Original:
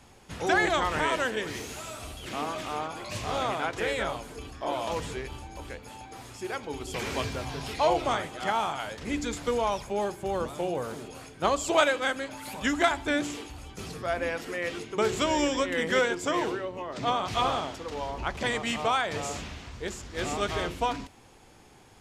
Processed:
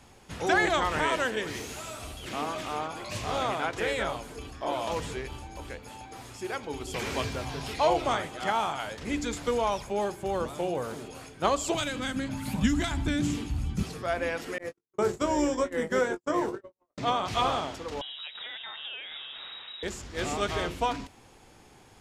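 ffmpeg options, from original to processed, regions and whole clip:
-filter_complex "[0:a]asettb=1/sr,asplit=3[a][b][c];[a]atrim=end=11.744[d];[b]atrim=start=11.74:end=13.83,asetpts=PTS-STARTPTS,afade=t=in:d=0.004:c=qsin,afade=t=out:st=2.086:d=0.004:c=qsin,acrossover=split=130|3000[e][f][g];[f]acompressor=threshold=-31dB:ratio=4:attack=3.2:release=140:knee=2.83:detection=peak[h];[e][h][g]amix=inputs=3:normalize=0,lowshelf=f=300:t=q:w=1.5:g=13.5[i];[c]atrim=start=13.826[j];[d][i]acrossfade=d=0.004:c1=hsin:c2=qsin[k];[k][j]acrossfade=d=0.004:c1=qsin:c2=hsin,asettb=1/sr,asplit=3[l][m][n];[l]atrim=end=14.584[o];[m]atrim=start=14.58:end=16.98,asetpts=PTS-STARTPTS,afade=t=in:d=0.004:c=qsin,afade=t=out:st=2.396:d=0.004:c=qsin,agate=range=-58dB:threshold=-31dB:ratio=16:release=100:detection=peak,equalizer=f=3k:t=o:w=1.4:g=-12.5,asplit=2[p][q];[q]adelay=20,volume=-9dB[r];[p][r]amix=inputs=2:normalize=0,atrim=end_sample=105840[s];[n]atrim=start=16.976[t];[o][s]acrossfade=d=0.004:c1=hsin:c2=qsin[u];[u][t]acrossfade=d=0.004:c1=qsin:c2=hsin,asettb=1/sr,asplit=3[v][w][x];[v]atrim=end=18.014[y];[w]atrim=start=18.01:end=19.83,asetpts=PTS-STARTPTS,afade=t=in:d=0.004:c=qsin,afade=t=out:st=1.816:d=0.004:c=qsin,acompressor=threshold=-37dB:ratio=5:attack=3.2:release=140:knee=1:detection=peak,lowpass=f=3.3k:t=q:w=0.5098,lowpass=f=3.3k:t=q:w=0.6013,lowpass=f=3.3k:t=q:w=0.9,lowpass=f=3.3k:t=q:w=2.563,afreqshift=-3900[z];[x]atrim=start=19.826[aa];[y][z]acrossfade=d=0.004:c1=hsin:c2=qsin[ab];[ab][aa]acrossfade=d=0.004:c1=qsin:c2=hsin"

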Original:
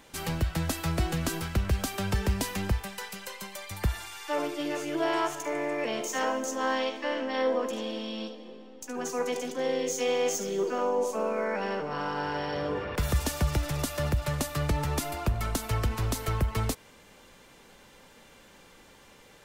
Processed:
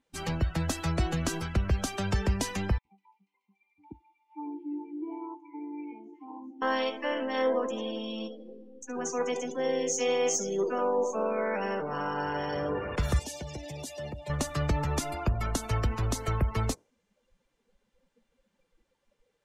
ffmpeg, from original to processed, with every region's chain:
-filter_complex "[0:a]asettb=1/sr,asplit=3[a][b][c];[a]atrim=end=2.784[d];[b]atrim=start=2.78:end=6.62,asetpts=PTS-STARTPTS,afade=t=in:d=0.004:c=qsin,afade=t=out:st=3.836:d=0.004:c=qsin,asplit=3[e][f][g];[e]bandpass=f=300:t=q:w=8,volume=0dB[h];[f]bandpass=f=870:t=q:w=8,volume=-6dB[i];[g]bandpass=f=2.24k:t=q:w=8,volume=-9dB[j];[h][i][j]amix=inputs=3:normalize=0,acrossover=split=1500[k][l];[k]adelay=70[m];[m][l]amix=inputs=2:normalize=0,atrim=end_sample=169344[n];[c]atrim=start=6.616[o];[d][n]acrossfade=d=0.004:c1=hsin:c2=qsin[p];[p][o]acrossfade=d=0.004:c1=qsin:c2=hsin,asettb=1/sr,asplit=3[q][r][s];[q]atrim=end=13.194[t];[r]atrim=start=13.19:end=14.3,asetpts=PTS-STARTPTS,afade=t=in:d=0.004:c=qsin,afade=t=out:st=1.106:d=0.004:c=qsin,highpass=f=380:p=1,equalizer=f=1.3k:w=2.2:g=-15,asoftclip=type=hard:threshold=-33dB[u];[s]atrim=start=14.296[v];[t][u]acrossfade=d=0.004:c1=hsin:c2=qsin[w];[w][v]acrossfade=d=0.004:c1=qsin:c2=hsin,afftdn=nr=25:nf=-42,lowpass=11k,adynamicequalizer=threshold=0.00282:dfrequency=6200:dqfactor=2.4:tfrequency=6200:tqfactor=2.4:attack=5:release=100:ratio=0.375:range=2.5:mode=boostabove:tftype=bell"

